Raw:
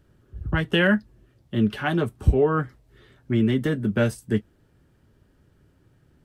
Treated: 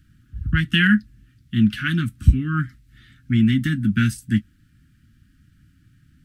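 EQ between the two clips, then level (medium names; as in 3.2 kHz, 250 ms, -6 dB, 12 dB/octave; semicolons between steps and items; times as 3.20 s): inverse Chebyshev band-stop 410–960 Hz, stop band 40 dB; +5.0 dB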